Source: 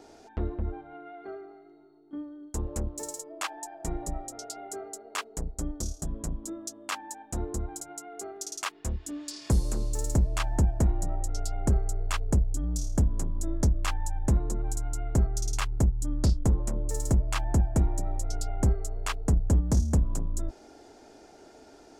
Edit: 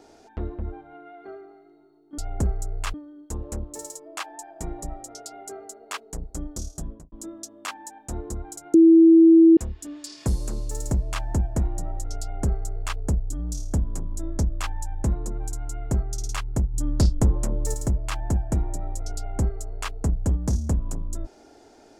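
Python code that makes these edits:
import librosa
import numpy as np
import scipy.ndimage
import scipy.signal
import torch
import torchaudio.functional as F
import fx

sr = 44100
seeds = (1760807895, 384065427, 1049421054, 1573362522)

y = fx.studio_fade_out(x, sr, start_s=6.07, length_s=0.29)
y = fx.edit(y, sr, fx.bleep(start_s=7.98, length_s=0.83, hz=328.0, db=-9.0),
    fx.duplicate(start_s=11.45, length_s=0.76, to_s=2.18),
    fx.clip_gain(start_s=15.98, length_s=1.0, db=4.5), tone=tone)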